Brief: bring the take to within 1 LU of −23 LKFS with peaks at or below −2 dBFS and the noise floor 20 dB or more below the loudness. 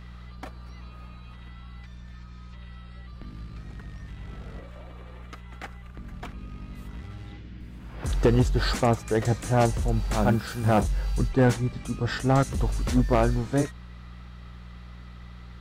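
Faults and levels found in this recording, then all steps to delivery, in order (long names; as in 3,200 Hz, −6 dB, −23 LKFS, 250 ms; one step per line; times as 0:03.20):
share of clipped samples 0.4%; peaks flattened at −13.5 dBFS; mains hum 60 Hz; hum harmonics up to 180 Hz; level of the hum −41 dBFS; integrated loudness −25.0 LKFS; sample peak −13.5 dBFS; target loudness −23.0 LKFS
→ clipped peaks rebuilt −13.5 dBFS
hum removal 60 Hz, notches 3
level +2 dB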